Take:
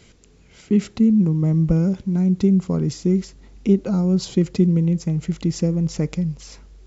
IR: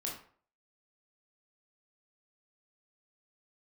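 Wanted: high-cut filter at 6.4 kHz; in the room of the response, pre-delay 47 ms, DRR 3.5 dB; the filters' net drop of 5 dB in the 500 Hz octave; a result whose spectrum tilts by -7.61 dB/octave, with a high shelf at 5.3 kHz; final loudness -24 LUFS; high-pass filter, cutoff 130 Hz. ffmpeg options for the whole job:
-filter_complex "[0:a]highpass=130,lowpass=6400,equalizer=f=500:t=o:g=-7.5,highshelf=f=5300:g=7,asplit=2[s0][s1];[1:a]atrim=start_sample=2205,adelay=47[s2];[s1][s2]afir=irnorm=-1:irlink=0,volume=0.631[s3];[s0][s3]amix=inputs=2:normalize=0,volume=0.668"

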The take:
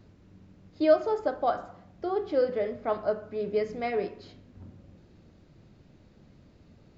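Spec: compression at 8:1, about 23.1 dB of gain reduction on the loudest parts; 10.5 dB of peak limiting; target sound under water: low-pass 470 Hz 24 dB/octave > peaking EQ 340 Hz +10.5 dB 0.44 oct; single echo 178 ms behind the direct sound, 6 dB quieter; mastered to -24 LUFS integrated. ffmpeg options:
-af "acompressor=threshold=0.01:ratio=8,alimiter=level_in=5.62:limit=0.0631:level=0:latency=1,volume=0.178,lowpass=f=470:w=0.5412,lowpass=f=470:w=1.3066,equalizer=f=340:t=o:w=0.44:g=10.5,aecho=1:1:178:0.501,volume=15.8"

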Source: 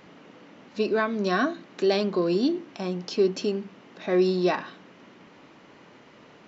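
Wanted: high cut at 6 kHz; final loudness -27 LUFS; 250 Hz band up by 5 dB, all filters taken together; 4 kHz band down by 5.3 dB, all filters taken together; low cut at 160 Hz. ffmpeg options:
-af "highpass=160,lowpass=6000,equalizer=f=250:t=o:g=8.5,equalizer=f=4000:t=o:g=-5.5,volume=0.596"

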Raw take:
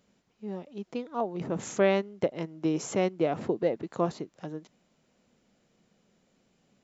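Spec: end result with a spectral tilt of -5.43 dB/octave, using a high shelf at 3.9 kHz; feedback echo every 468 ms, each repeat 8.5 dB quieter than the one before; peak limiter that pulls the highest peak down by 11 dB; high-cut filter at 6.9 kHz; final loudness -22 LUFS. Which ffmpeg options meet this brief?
-af "lowpass=6900,highshelf=f=3900:g=3.5,alimiter=limit=0.0841:level=0:latency=1,aecho=1:1:468|936|1404|1872:0.376|0.143|0.0543|0.0206,volume=4.22"

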